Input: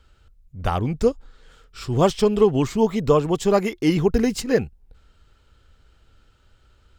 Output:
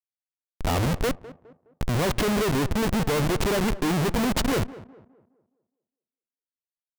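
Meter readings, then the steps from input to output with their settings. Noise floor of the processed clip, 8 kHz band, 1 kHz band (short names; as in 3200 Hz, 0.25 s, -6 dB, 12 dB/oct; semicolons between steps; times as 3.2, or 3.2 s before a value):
under -85 dBFS, +2.5 dB, -2.5 dB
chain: Schmitt trigger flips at -26.5 dBFS; tape echo 0.206 s, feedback 42%, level -15 dB, low-pass 1300 Hz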